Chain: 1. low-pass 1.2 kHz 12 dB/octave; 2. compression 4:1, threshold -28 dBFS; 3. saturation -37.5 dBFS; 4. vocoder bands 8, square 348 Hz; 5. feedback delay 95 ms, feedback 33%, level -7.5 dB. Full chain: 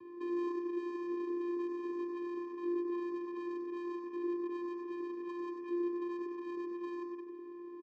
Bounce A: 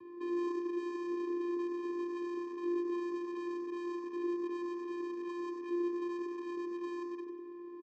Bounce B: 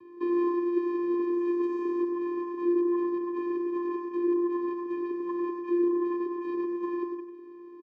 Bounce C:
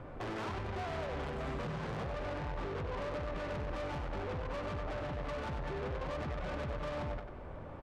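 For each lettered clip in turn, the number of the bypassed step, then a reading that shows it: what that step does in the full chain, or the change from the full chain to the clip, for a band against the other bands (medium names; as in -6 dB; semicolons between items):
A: 2, mean gain reduction 7.5 dB; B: 3, distortion -7 dB; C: 4, 250 Hz band -13.5 dB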